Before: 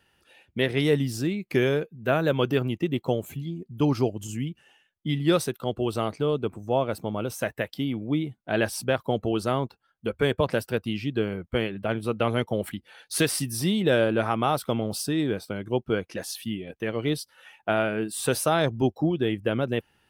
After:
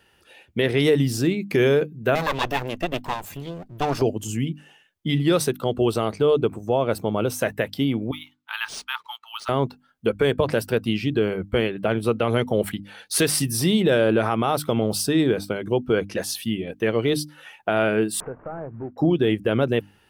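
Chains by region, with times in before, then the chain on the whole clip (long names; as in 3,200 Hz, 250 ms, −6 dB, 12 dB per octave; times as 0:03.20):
0:02.15–0:04.02: lower of the sound and its delayed copy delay 1.1 ms + low-shelf EQ 370 Hz −6 dB
0:08.11–0:09.49: Chebyshev high-pass with heavy ripple 860 Hz, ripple 6 dB + linearly interpolated sample-rate reduction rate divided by 3×
0:18.20–0:18.98: variable-slope delta modulation 16 kbit/s + low-pass filter 1,500 Hz 24 dB per octave + downward compressor 2.5 to 1, threshold −44 dBFS
whole clip: parametric band 430 Hz +3 dB 0.43 octaves; mains-hum notches 50/100/150/200/250/300 Hz; brickwall limiter −16 dBFS; level +6 dB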